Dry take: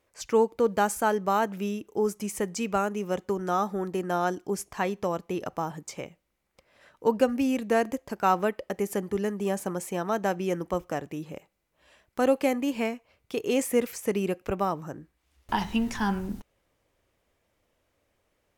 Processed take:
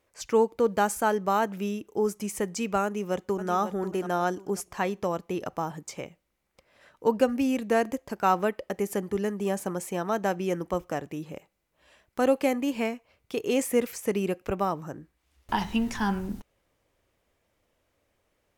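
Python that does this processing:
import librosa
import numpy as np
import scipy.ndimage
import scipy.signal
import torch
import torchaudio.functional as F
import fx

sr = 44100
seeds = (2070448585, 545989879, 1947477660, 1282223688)

y = fx.echo_throw(x, sr, start_s=2.84, length_s=0.68, ms=540, feedback_pct=30, wet_db=-10.5)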